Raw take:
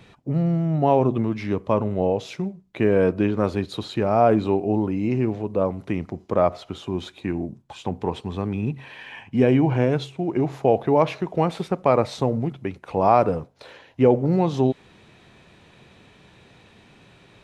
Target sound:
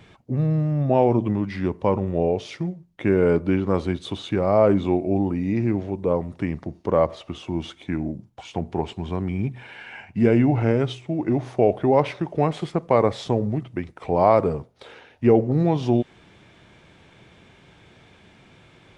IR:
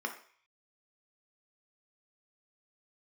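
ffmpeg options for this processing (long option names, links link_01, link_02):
-af "asetrate=40517,aresample=44100"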